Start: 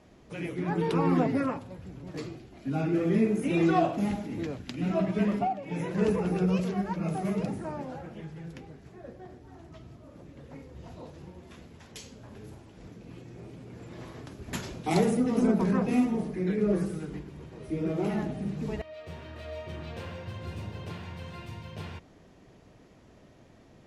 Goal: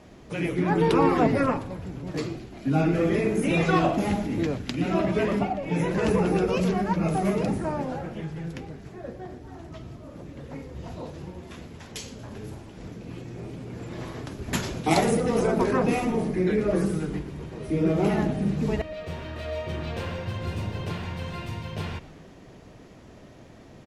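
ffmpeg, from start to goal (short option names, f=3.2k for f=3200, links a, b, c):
-filter_complex "[0:a]afftfilt=real='re*lt(hypot(re,im),0.447)':imag='im*lt(hypot(re,im),0.447)':win_size=1024:overlap=0.75,asplit=7[a][b][c][d][e][f][g];[b]adelay=117,afreqshift=-120,volume=-19.5dB[h];[c]adelay=234,afreqshift=-240,volume=-23.5dB[i];[d]adelay=351,afreqshift=-360,volume=-27.5dB[j];[e]adelay=468,afreqshift=-480,volume=-31.5dB[k];[f]adelay=585,afreqshift=-600,volume=-35.6dB[l];[g]adelay=702,afreqshift=-720,volume=-39.6dB[m];[a][h][i][j][k][l][m]amix=inputs=7:normalize=0,volume=7.5dB"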